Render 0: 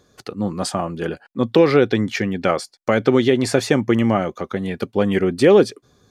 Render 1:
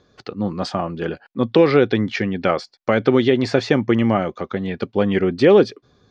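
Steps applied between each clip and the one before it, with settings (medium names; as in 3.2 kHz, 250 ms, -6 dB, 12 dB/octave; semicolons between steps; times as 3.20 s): low-pass 5.1 kHz 24 dB/octave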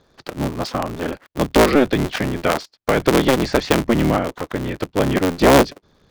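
cycle switcher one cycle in 3, inverted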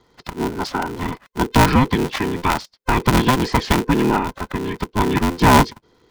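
every band turned upside down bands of 500 Hz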